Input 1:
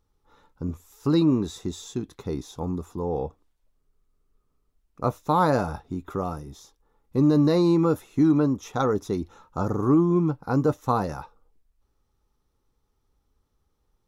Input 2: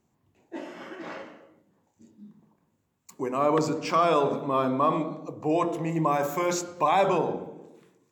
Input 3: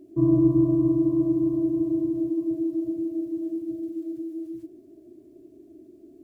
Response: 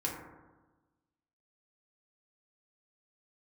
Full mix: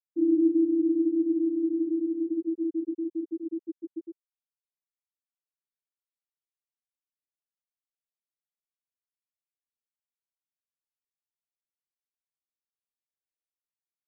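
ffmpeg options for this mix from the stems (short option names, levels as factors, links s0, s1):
-filter_complex "[1:a]adelay=1400,volume=0.15[s0];[2:a]highpass=260,volume=0.891[s1];[s0][s1]amix=inputs=2:normalize=0,afftfilt=real='re*gte(hypot(re,im),0.282)':imag='im*gte(hypot(re,im),0.282)':win_size=1024:overlap=0.75"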